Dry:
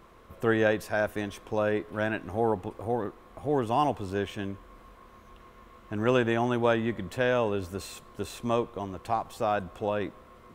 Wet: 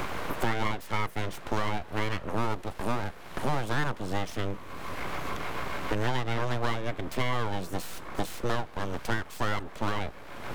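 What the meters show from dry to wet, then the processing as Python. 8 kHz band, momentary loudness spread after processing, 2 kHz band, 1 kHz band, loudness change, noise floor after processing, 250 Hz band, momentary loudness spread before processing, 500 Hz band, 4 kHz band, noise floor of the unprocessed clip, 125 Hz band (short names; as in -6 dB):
+3.0 dB, 6 LU, 0.0 dB, -1.0 dB, -3.5 dB, -44 dBFS, -4.5 dB, 13 LU, -7.0 dB, +3.5 dB, -53 dBFS, +2.0 dB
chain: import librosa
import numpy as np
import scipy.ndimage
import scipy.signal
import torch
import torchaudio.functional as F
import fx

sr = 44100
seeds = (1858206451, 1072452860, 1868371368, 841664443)

y = np.abs(x)
y = fx.band_squash(y, sr, depth_pct=100)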